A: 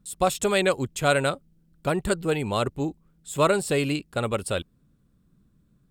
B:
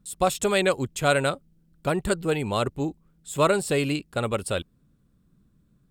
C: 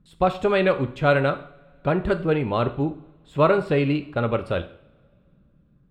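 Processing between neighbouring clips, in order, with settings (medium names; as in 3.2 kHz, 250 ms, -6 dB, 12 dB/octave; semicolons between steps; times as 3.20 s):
no audible change
distance through air 360 m; on a send at -8 dB: reverberation, pre-delay 3 ms; on the sum: trim +3.5 dB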